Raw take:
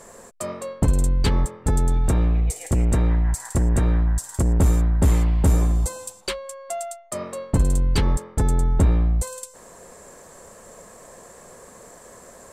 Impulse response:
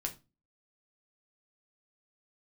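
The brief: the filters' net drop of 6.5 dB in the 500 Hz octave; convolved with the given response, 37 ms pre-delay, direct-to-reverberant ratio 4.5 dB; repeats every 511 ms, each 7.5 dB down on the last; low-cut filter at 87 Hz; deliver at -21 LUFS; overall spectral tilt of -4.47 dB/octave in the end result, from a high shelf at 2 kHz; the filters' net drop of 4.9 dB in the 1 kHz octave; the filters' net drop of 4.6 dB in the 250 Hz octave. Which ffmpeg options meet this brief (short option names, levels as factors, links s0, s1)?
-filter_complex "[0:a]highpass=87,equalizer=f=250:t=o:g=-5.5,equalizer=f=500:t=o:g=-5.5,equalizer=f=1000:t=o:g=-5,highshelf=f=2000:g=3.5,aecho=1:1:511|1022|1533|2044|2555:0.422|0.177|0.0744|0.0312|0.0131,asplit=2[s0][s1];[1:a]atrim=start_sample=2205,adelay=37[s2];[s1][s2]afir=irnorm=-1:irlink=0,volume=0.562[s3];[s0][s3]amix=inputs=2:normalize=0,volume=1.68"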